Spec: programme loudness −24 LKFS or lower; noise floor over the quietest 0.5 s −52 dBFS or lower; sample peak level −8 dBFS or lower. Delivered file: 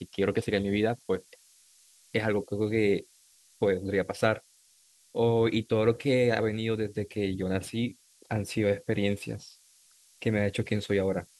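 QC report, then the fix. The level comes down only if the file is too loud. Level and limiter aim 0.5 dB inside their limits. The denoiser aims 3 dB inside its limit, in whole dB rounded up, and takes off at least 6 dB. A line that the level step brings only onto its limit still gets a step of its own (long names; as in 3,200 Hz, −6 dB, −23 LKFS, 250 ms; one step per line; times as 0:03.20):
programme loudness −29.0 LKFS: in spec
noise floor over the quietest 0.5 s −62 dBFS: in spec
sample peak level −9.5 dBFS: in spec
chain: no processing needed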